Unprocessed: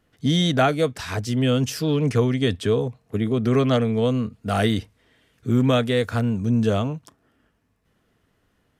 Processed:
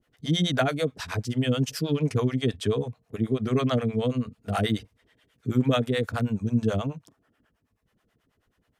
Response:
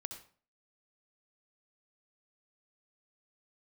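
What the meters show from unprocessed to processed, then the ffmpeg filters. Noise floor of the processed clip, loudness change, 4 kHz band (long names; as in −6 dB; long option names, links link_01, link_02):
−74 dBFS, −5.0 dB, −4.0 dB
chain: -filter_complex "[0:a]acrossover=split=520[link_01][link_02];[link_01]aeval=exprs='val(0)*(1-1/2+1/2*cos(2*PI*9.3*n/s))':channel_layout=same[link_03];[link_02]aeval=exprs='val(0)*(1-1/2-1/2*cos(2*PI*9.3*n/s))':channel_layout=same[link_04];[link_03][link_04]amix=inputs=2:normalize=0"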